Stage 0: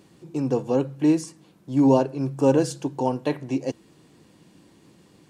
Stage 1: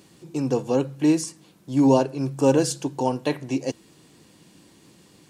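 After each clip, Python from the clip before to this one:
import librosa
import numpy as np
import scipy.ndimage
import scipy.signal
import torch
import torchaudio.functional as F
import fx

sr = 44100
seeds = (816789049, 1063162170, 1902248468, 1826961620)

y = fx.high_shelf(x, sr, hz=2500.0, db=7.5)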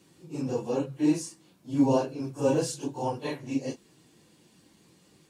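y = fx.phase_scramble(x, sr, seeds[0], window_ms=100)
y = y * librosa.db_to_amplitude(-6.5)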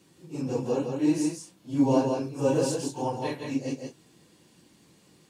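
y = x + 10.0 ** (-4.5 / 20.0) * np.pad(x, (int(165 * sr / 1000.0), 0))[:len(x)]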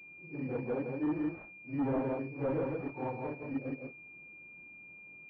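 y = np.clip(x, -10.0 ** (-21.5 / 20.0), 10.0 ** (-21.5 / 20.0))
y = fx.pwm(y, sr, carrier_hz=2400.0)
y = y * librosa.db_to_amplitude(-6.5)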